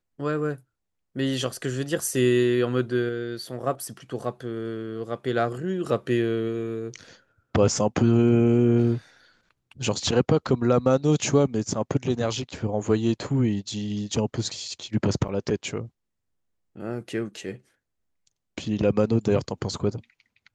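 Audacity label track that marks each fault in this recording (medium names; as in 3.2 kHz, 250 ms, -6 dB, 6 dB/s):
15.280000	15.290000	dropout 6.8 ms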